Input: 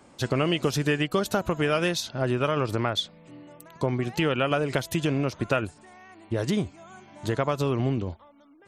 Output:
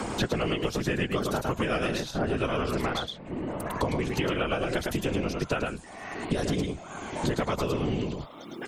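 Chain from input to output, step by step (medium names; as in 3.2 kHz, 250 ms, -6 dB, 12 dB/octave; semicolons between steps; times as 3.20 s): whisper effect; delay 106 ms -4 dB; three bands compressed up and down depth 100%; trim -4.5 dB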